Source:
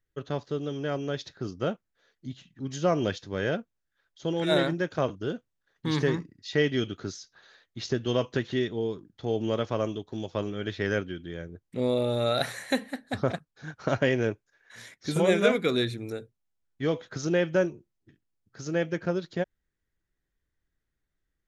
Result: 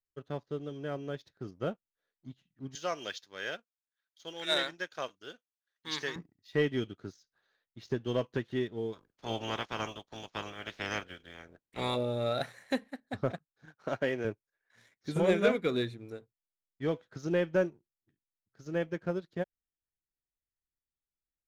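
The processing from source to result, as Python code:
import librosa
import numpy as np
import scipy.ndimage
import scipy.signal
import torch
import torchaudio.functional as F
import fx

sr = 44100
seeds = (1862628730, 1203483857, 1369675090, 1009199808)

y = fx.weighting(x, sr, curve='ITU-R 468', at=(2.75, 6.16))
y = fx.spec_clip(y, sr, under_db=26, at=(8.92, 11.95), fade=0.02)
y = fx.highpass(y, sr, hz=280.0, slope=6, at=(13.65, 14.25))
y = fx.high_shelf(y, sr, hz=3800.0, db=-7.5)
y = fx.leveller(y, sr, passes=1)
y = fx.upward_expand(y, sr, threshold_db=-38.0, expansion=1.5)
y = F.gain(torch.from_numpy(y), -5.0).numpy()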